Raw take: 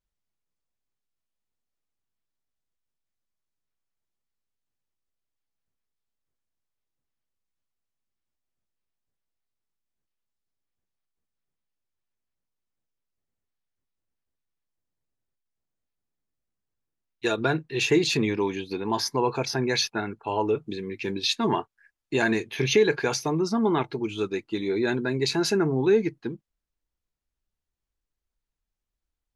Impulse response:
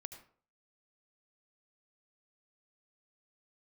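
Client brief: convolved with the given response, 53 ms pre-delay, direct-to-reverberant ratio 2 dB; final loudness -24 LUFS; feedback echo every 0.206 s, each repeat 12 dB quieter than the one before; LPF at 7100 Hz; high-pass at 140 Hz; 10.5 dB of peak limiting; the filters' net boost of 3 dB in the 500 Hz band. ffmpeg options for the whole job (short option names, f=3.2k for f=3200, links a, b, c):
-filter_complex "[0:a]highpass=140,lowpass=7.1k,equalizer=f=500:t=o:g=4,alimiter=limit=-17.5dB:level=0:latency=1,aecho=1:1:206|412|618:0.251|0.0628|0.0157,asplit=2[a][b];[1:a]atrim=start_sample=2205,adelay=53[c];[b][c]afir=irnorm=-1:irlink=0,volume=2.5dB[d];[a][d]amix=inputs=2:normalize=0,volume=1dB"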